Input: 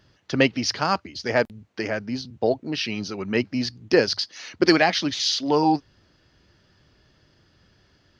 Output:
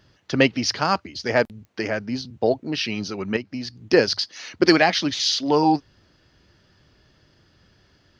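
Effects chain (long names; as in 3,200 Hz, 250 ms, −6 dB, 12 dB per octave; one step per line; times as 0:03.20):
0:03.36–0:03.82: downward compressor 10 to 1, threshold −28 dBFS, peak gain reduction 12 dB
digital clicks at 0:01.65, −37 dBFS
level +1.5 dB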